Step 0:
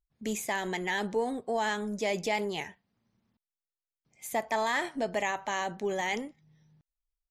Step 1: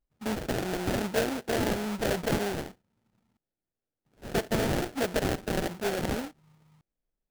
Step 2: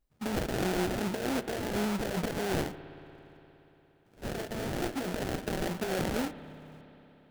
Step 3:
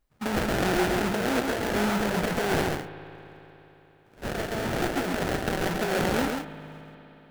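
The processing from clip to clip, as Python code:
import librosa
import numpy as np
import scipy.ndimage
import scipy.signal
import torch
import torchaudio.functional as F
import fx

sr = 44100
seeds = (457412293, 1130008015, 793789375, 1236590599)

y1 = fx.sample_hold(x, sr, seeds[0], rate_hz=1100.0, jitter_pct=20)
y1 = F.gain(torch.from_numpy(y1), 2.0).numpy()
y2 = fx.over_compress(y1, sr, threshold_db=-33.0, ratio=-1.0)
y2 = fx.rev_spring(y2, sr, rt60_s=3.7, pass_ms=(58,), chirp_ms=40, drr_db=13.0)
y2 = F.gain(torch.from_numpy(y2), 1.0).numpy()
y3 = fx.peak_eq(y2, sr, hz=1400.0, db=5.0, octaves=2.1)
y3 = y3 + 10.0 ** (-4.0 / 20.0) * np.pad(y3, (int(135 * sr / 1000.0), 0))[:len(y3)]
y3 = F.gain(torch.from_numpy(y3), 3.0).numpy()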